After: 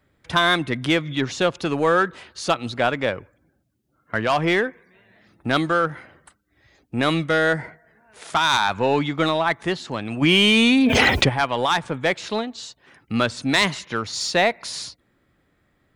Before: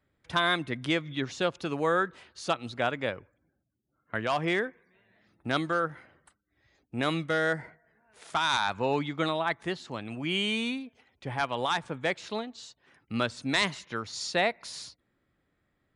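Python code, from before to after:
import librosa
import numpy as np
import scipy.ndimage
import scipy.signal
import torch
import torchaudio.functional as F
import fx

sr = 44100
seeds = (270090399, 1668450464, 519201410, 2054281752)

p1 = 10.0 ** (-30.5 / 20.0) * np.tanh(x / 10.0 ** (-30.5 / 20.0))
p2 = x + F.gain(torch.from_numpy(p1), -4.5).numpy()
p3 = fx.env_flatten(p2, sr, amount_pct=100, at=(10.21, 11.28), fade=0.02)
y = F.gain(torch.from_numpy(p3), 6.0).numpy()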